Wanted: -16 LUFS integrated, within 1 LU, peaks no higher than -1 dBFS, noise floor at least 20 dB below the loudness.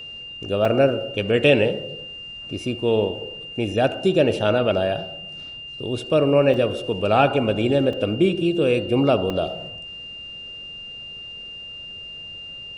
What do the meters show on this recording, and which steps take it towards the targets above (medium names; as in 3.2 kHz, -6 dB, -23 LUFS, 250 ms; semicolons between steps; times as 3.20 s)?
dropouts 4; longest dropout 3.1 ms; steady tone 2.8 kHz; tone level -34 dBFS; loudness -21.0 LUFS; peak level -4.0 dBFS; loudness target -16.0 LUFS
-> interpolate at 0.65/6.54/7.93/9.30 s, 3.1 ms; band-stop 2.8 kHz, Q 30; trim +5 dB; peak limiter -1 dBFS